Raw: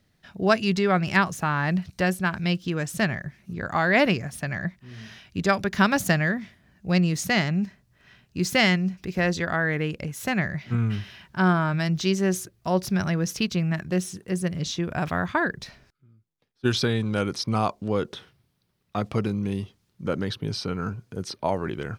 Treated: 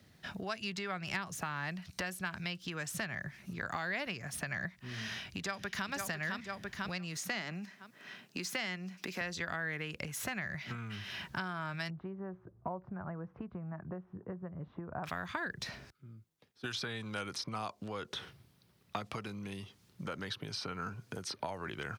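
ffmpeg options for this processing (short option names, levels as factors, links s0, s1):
-filter_complex "[0:a]asplit=2[s0][s1];[s1]afade=t=in:st=4.93:d=0.01,afade=t=out:st=5.9:d=0.01,aecho=0:1:500|1000|1500|2000:0.501187|0.150356|0.0451069|0.0135321[s2];[s0][s2]amix=inputs=2:normalize=0,asettb=1/sr,asplit=3[s3][s4][s5];[s3]atrim=end=7.174[s6];[s4]atrim=start=7.17:end=9.21,asetpts=PTS-STARTPTS,afade=t=in:d=0.004:c=qsin,afade=t=out:st=2.036:d=0.004:c=qsin,highpass=f=190:w=0.5412,highpass=f=190:w=1.3066[s7];[s5]atrim=start=9.206[s8];[s6][s7]acrossfade=d=0.004:c1=hsin:c2=qsin[s9];[s9][s8]acrossfade=d=0.004:c1=qsin:c2=hsin,asettb=1/sr,asplit=3[s10][s11][s12];[s10]atrim=end=11.904[s13];[s11]atrim=start=11.9:end=15.04,asetpts=PTS-STARTPTS,afade=t=in:d=0.004:c=qsin,afade=t=out:st=3.136:d=0.004:c=qsin,lowpass=f=1100:w=0.5412,lowpass=f=1100:w=1.3066[s14];[s12]atrim=start=15.036[s15];[s13][s14]acrossfade=d=0.004:c1=hsin:c2=qsin[s16];[s16][s15]acrossfade=d=0.004:c1=qsin:c2=hsin,acompressor=threshold=0.02:ratio=5,highpass=61,acrossover=split=110|780|2400[s17][s18][s19][s20];[s17]acompressor=threshold=0.001:ratio=4[s21];[s18]acompressor=threshold=0.00316:ratio=4[s22];[s19]acompressor=threshold=0.00708:ratio=4[s23];[s20]acompressor=threshold=0.00562:ratio=4[s24];[s21][s22][s23][s24]amix=inputs=4:normalize=0,volume=1.78"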